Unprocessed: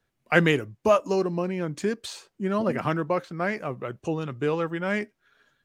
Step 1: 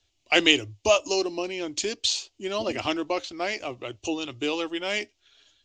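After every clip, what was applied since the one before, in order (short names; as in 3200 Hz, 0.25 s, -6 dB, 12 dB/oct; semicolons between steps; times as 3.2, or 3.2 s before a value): EQ curve 100 Hz 0 dB, 160 Hz -28 dB, 310 Hz -3 dB, 470 Hz -11 dB, 700 Hz -4 dB, 1000 Hz -9 dB, 1600 Hz -13 dB, 2900 Hz +8 dB, 7100 Hz +8 dB, 10000 Hz -18 dB; gain +5.5 dB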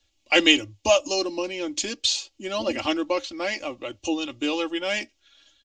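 comb 3.6 ms, depth 69%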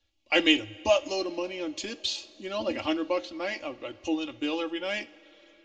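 air absorption 110 m; two-slope reverb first 0.33 s, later 4.6 s, from -18 dB, DRR 13 dB; gain -4 dB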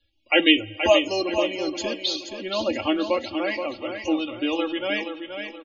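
loudest bins only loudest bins 64; on a send: feedback echo 0.476 s, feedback 38%, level -7.5 dB; on the sum: gain +5 dB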